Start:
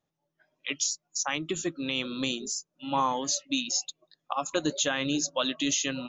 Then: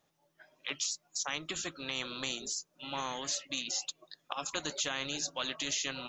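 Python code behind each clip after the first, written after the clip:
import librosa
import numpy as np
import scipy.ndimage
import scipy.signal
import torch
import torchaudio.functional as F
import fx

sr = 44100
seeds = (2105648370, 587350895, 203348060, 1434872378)

y = fx.low_shelf(x, sr, hz=380.0, db=-8.0)
y = fx.spectral_comp(y, sr, ratio=2.0)
y = y * 10.0 ** (-3.0 / 20.0)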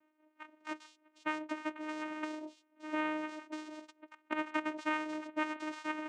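y = fx.lowpass_res(x, sr, hz=1600.0, q=3.3)
y = fx.vocoder(y, sr, bands=4, carrier='saw', carrier_hz=308.0)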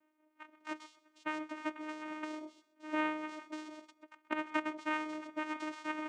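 y = fx.echo_feedback(x, sr, ms=129, feedback_pct=29, wet_db=-18.0)
y = fx.am_noise(y, sr, seeds[0], hz=5.7, depth_pct=60)
y = y * 10.0 ** (2.0 / 20.0)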